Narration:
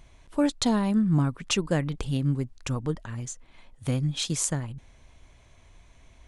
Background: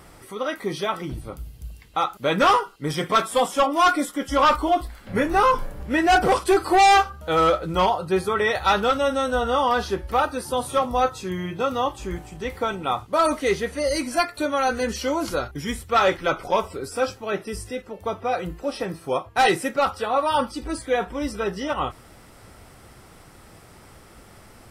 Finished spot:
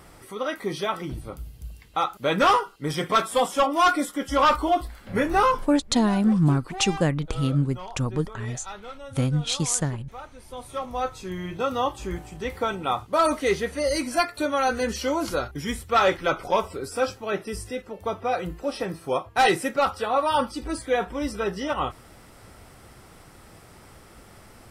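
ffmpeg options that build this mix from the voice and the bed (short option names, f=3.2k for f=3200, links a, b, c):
-filter_complex "[0:a]adelay=5300,volume=3dB[a];[1:a]volume=17dB,afade=t=out:st=5.43:d=0.4:silence=0.125893,afade=t=in:st=10.37:d=1.49:silence=0.11885[b];[a][b]amix=inputs=2:normalize=0"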